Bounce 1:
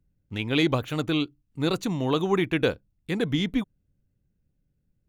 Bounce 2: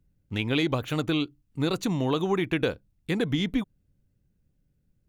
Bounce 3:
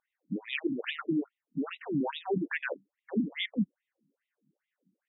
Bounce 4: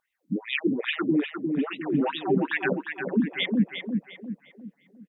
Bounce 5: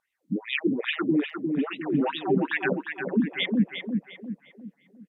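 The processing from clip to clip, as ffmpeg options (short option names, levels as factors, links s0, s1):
-af "acompressor=threshold=0.0562:ratio=3,volume=1.33"
-af "equalizer=f=1800:t=o:w=0.36:g=8,alimiter=limit=0.0668:level=0:latency=1:release=22,afftfilt=real='re*between(b*sr/1024,220*pow(2800/220,0.5+0.5*sin(2*PI*2.4*pts/sr))/1.41,220*pow(2800/220,0.5+0.5*sin(2*PI*2.4*pts/sr))*1.41)':imag='im*between(b*sr/1024,220*pow(2800/220,0.5+0.5*sin(2*PI*2.4*pts/sr))/1.41,220*pow(2800/220,0.5+0.5*sin(2*PI*2.4*pts/sr))*1.41)':win_size=1024:overlap=0.75,volume=2.24"
-filter_complex "[0:a]asplit=2[s0][s1];[s1]adelay=353,lowpass=f=2600:p=1,volume=0.562,asplit=2[s2][s3];[s3]adelay=353,lowpass=f=2600:p=1,volume=0.44,asplit=2[s4][s5];[s5]adelay=353,lowpass=f=2600:p=1,volume=0.44,asplit=2[s6][s7];[s7]adelay=353,lowpass=f=2600:p=1,volume=0.44,asplit=2[s8][s9];[s9]adelay=353,lowpass=f=2600:p=1,volume=0.44[s10];[s0][s2][s4][s6][s8][s10]amix=inputs=6:normalize=0,volume=2"
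-ar 32000 -c:a aac -b:a 96k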